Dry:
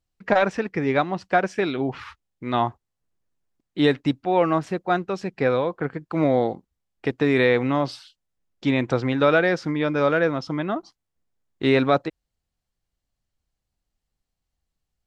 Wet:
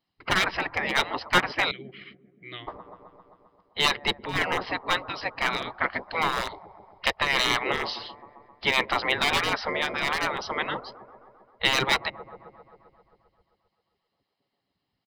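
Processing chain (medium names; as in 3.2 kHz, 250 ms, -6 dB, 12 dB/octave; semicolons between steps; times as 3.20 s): on a send: feedback echo behind a low-pass 132 ms, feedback 71%, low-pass 600 Hz, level -13 dB; on the sum: resampled via 11.025 kHz; 1.71–2.68 s: vowel filter i; hard clipper -13 dBFS, distortion -17 dB; comb 1 ms, depth 41%; spectral gate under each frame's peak -15 dB weak; 5.74–7.12 s: treble shelf 3.4 kHz +10 dB; harmonic-percussive split percussive +7 dB; trim +3 dB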